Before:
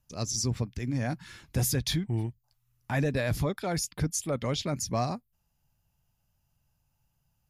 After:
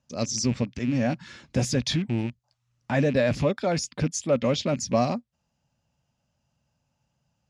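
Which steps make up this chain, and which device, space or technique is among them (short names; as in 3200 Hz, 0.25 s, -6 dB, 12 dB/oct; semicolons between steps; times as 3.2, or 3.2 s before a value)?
car door speaker with a rattle (rattling part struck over -34 dBFS, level -34 dBFS; speaker cabinet 80–7100 Hz, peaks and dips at 99 Hz -5 dB, 240 Hz +8 dB, 560 Hz +8 dB); gain +3 dB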